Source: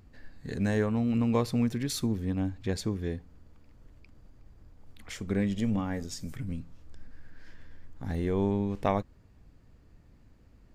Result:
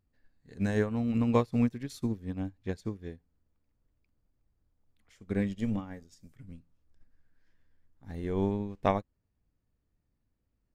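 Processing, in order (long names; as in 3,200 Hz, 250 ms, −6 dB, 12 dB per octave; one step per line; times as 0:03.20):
tape wow and flutter 26 cents
expander for the loud parts 2.5 to 1, over −39 dBFS
level +3.5 dB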